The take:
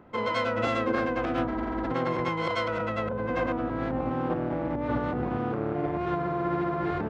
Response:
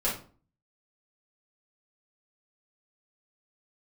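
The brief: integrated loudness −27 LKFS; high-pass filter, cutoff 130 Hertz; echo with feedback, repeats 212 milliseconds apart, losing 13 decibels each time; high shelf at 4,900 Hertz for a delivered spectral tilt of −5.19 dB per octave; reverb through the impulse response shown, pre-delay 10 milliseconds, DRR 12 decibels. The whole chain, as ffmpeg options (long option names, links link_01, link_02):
-filter_complex "[0:a]highpass=130,highshelf=frequency=4900:gain=-6.5,aecho=1:1:212|424|636:0.224|0.0493|0.0108,asplit=2[link_01][link_02];[1:a]atrim=start_sample=2205,adelay=10[link_03];[link_02][link_03]afir=irnorm=-1:irlink=0,volume=-20.5dB[link_04];[link_01][link_04]amix=inputs=2:normalize=0,volume=1.5dB"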